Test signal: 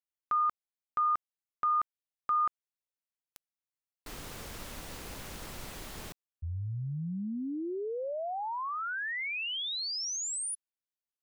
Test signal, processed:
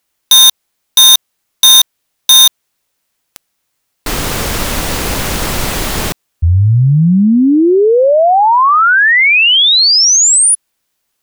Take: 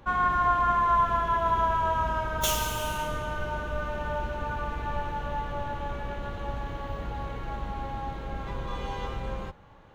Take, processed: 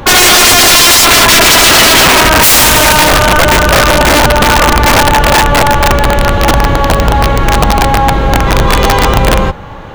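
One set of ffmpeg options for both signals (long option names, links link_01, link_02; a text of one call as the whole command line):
ffmpeg -i in.wav -af "aeval=exprs='(mod(17.8*val(0)+1,2)-1)/17.8':channel_layout=same,apsyclip=29dB,volume=-2dB" out.wav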